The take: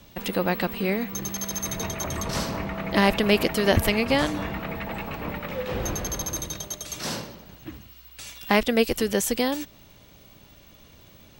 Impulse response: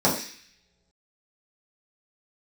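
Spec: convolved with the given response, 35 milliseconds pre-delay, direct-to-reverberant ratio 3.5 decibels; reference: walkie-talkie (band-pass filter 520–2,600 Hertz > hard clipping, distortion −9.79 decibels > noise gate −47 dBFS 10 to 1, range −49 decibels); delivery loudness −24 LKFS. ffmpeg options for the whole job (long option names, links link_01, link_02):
-filter_complex "[0:a]asplit=2[link_01][link_02];[1:a]atrim=start_sample=2205,adelay=35[link_03];[link_02][link_03]afir=irnorm=-1:irlink=0,volume=-20.5dB[link_04];[link_01][link_04]amix=inputs=2:normalize=0,highpass=520,lowpass=2600,asoftclip=type=hard:threshold=-20.5dB,agate=range=-49dB:threshold=-47dB:ratio=10,volume=5.5dB"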